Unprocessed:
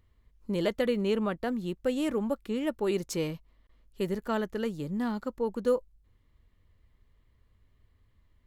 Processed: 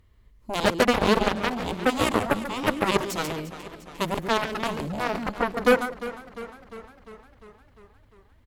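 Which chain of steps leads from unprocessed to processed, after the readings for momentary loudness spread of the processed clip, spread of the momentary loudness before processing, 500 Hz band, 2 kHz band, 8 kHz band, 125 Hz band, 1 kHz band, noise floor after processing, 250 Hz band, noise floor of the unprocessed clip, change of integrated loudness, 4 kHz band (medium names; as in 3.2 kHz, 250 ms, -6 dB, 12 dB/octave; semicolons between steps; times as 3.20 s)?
19 LU, 6 LU, +4.5 dB, +14.0 dB, +9.5 dB, +5.0 dB, +14.0 dB, -58 dBFS, +3.0 dB, -67 dBFS, +6.0 dB, +12.0 dB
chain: delay 140 ms -6 dB; Chebyshev shaper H 7 -11 dB, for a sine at -14.5 dBFS; modulated delay 352 ms, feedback 62%, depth 63 cents, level -15 dB; trim +6.5 dB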